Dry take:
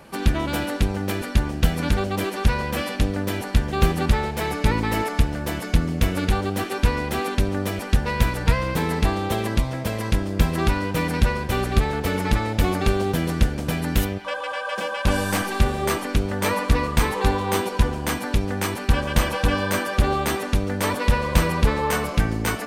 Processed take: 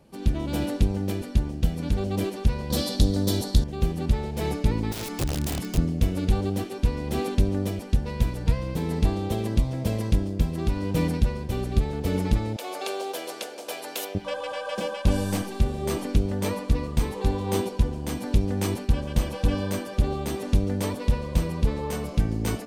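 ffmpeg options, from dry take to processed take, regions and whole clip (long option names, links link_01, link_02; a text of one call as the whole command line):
ffmpeg -i in.wav -filter_complex "[0:a]asettb=1/sr,asplit=3[link_01][link_02][link_03];[link_01]atrim=end=2.704[link_04];[link_02]atrim=start=2.7:end=3.64,asetpts=PTS-STARTPTS,afade=type=in:duration=0.004:curve=qsin,afade=type=out:start_time=0.936:duration=0.004:curve=qsin,highshelf=frequency=3200:width_type=q:width=3:gain=6.5,acontrast=61[link_05];[link_03]atrim=start=3.636[link_06];[link_04][link_05]acrossfade=duration=0.004:curve1=hsin:curve2=qsin[link_07];[link_07][link_06]acrossfade=duration=0.004:curve1=qsin:curve2=hsin,asettb=1/sr,asplit=3[link_08][link_09][link_10];[link_08]atrim=end=4.924[link_11];[link_09]atrim=start=4.92:end=5.78,asetpts=PTS-STARTPTS,afade=type=in:duration=0.004:curve=qsin,afade=type=out:start_time=0.856:duration=0.004:curve=qsin,equalizer=frequency=580:width_type=o:width=0.69:gain=-13.5,acompressor=threshold=-21dB:ratio=2.5:attack=3.2:release=140:knee=1:detection=peak,aeval=exprs='(mod(11.9*val(0)+1,2)-1)/11.9':channel_layout=same[link_12];[link_10]atrim=start=5.776[link_13];[link_11][link_12]acrossfade=duration=0.004:curve1=hsin:curve2=qsin[link_14];[link_14][link_13]acrossfade=duration=0.004:curve1=qsin:curve2=hsin,asettb=1/sr,asplit=3[link_15][link_16][link_17];[link_15]atrim=end=12.564[link_18];[link_16]atrim=start=12.56:end=14.15,asetpts=PTS-STARTPTS,afade=type=in:duration=0.004:curve=qsin,afade=type=out:start_time=1.586:duration=0.004:curve=qsin,highpass=frequency=510:width=0.5412,highpass=frequency=510:width=1.3066,bandreject=frequency=1900:width=14[link_19];[link_17]atrim=start=14.146[link_20];[link_18][link_19]acrossfade=duration=0.004:curve1=hsin:curve2=qsin[link_21];[link_21][link_20]acrossfade=duration=0.004:curve1=qsin:curve2=hsin,equalizer=frequency=1500:width_type=o:width=2.1:gain=-13.5,dynaudnorm=framelen=160:gausssize=3:maxgain=11dB,highshelf=frequency=6900:gain=-8.5,volume=-6.5dB" out.wav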